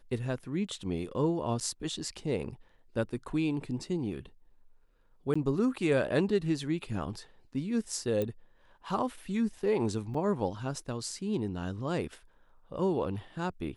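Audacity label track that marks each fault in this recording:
1.600000	1.610000	gap 8 ms
5.340000	5.360000	gap 15 ms
8.220000	8.220000	pop -20 dBFS
10.140000	10.140000	gap 4.9 ms

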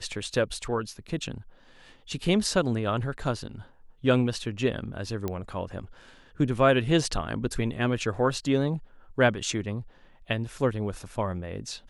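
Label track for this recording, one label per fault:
5.280000	5.280000	pop -17 dBFS

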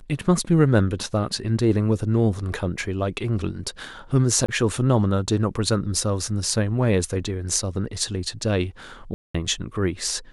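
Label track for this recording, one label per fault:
4.460000	4.490000	gap 25 ms
9.140000	9.350000	gap 0.205 s

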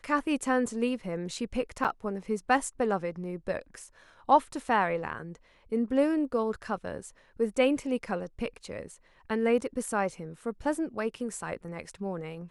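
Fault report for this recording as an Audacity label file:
1.840000	1.850000	gap 7.1 ms

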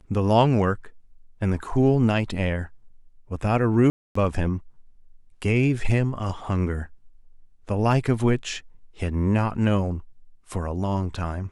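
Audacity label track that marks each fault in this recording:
3.900000	4.150000	gap 0.254 s

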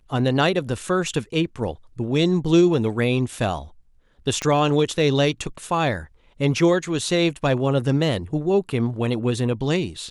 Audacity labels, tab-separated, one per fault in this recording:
4.420000	4.420000	pop -12 dBFS

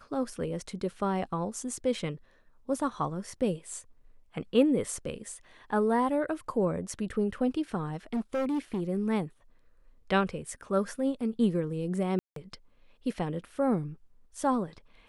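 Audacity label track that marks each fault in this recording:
7.870000	8.820000	clipped -26.5 dBFS
12.190000	12.360000	gap 0.173 s

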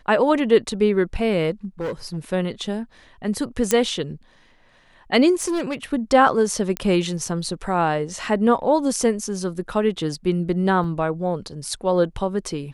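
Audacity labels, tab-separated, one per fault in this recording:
1.650000	2.180000	clipped -23 dBFS
3.710000	3.710000	pop -4 dBFS
5.340000	5.750000	clipped -20 dBFS
6.770000	6.770000	pop -9 dBFS
10.840000	10.840000	gap 3.3 ms

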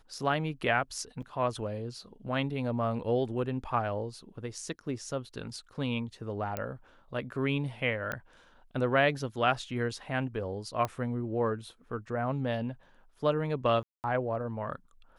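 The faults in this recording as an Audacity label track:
1.220000	1.230000	gap 5.7 ms
6.570000	6.570000	pop -18 dBFS
8.120000	8.120000	pop -19 dBFS
10.850000	10.850000	pop -18 dBFS
13.830000	14.040000	gap 0.209 s

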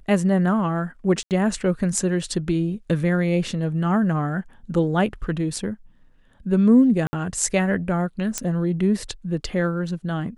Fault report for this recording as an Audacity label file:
1.230000	1.310000	gap 78 ms
7.070000	7.130000	gap 60 ms
8.380000	8.380000	pop -8 dBFS

